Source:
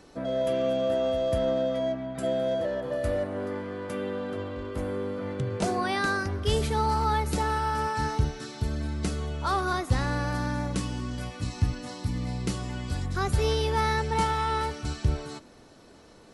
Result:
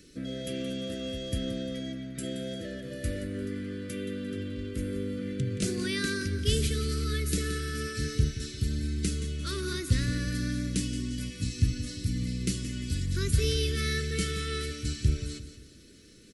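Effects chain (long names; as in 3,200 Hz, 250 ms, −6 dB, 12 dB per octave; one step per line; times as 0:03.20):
Butterworth band-reject 850 Hz, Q 0.56
high-shelf EQ 6,600 Hz +7.5 dB
repeating echo 174 ms, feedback 41%, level −12 dB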